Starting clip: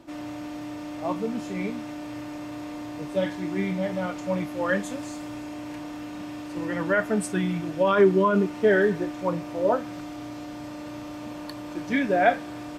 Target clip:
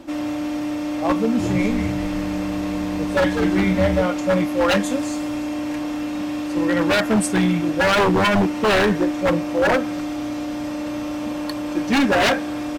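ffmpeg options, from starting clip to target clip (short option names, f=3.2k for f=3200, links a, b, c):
-filter_complex "[0:a]aecho=1:1:3.7:0.43,aeval=exprs='0.1*(abs(mod(val(0)/0.1+3,4)-2)-1)':c=same,asplit=3[a][b][c];[a]afade=t=out:st=1.38:d=0.02[d];[b]asplit=6[e][f][g][h][i][j];[f]adelay=200,afreqshift=-110,volume=-6.5dB[k];[g]adelay=400,afreqshift=-220,volume=-13.6dB[l];[h]adelay=600,afreqshift=-330,volume=-20.8dB[m];[i]adelay=800,afreqshift=-440,volume=-27.9dB[n];[j]adelay=1000,afreqshift=-550,volume=-35dB[o];[e][k][l][m][n][o]amix=inputs=6:normalize=0,afade=t=in:st=1.38:d=0.02,afade=t=out:st=4.01:d=0.02[p];[c]afade=t=in:st=4.01:d=0.02[q];[d][p][q]amix=inputs=3:normalize=0,volume=8.5dB"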